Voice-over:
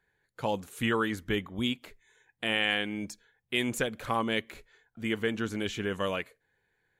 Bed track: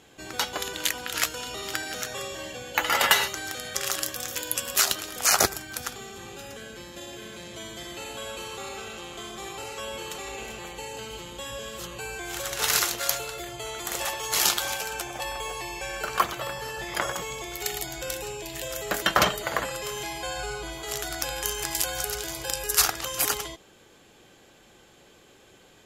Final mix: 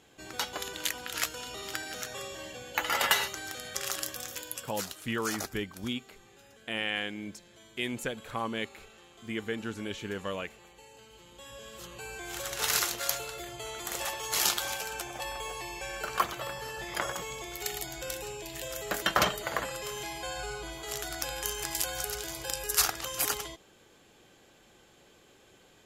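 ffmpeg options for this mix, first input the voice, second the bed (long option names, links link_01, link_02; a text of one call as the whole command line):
ffmpeg -i stem1.wav -i stem2.wav -filter_complex "[0:a]adelay=4250,volume=-4.5dB[link_01];[1:a]volume=6.5dB,afade=type=out:start_time=4.17:duration=0.6:silence=0.281838,afade=type=in:start_time=11.13:duration=1.26:silence=0.251189[link_02];[link_01][link_02]amix=inputs=2:normalize=0" out.wav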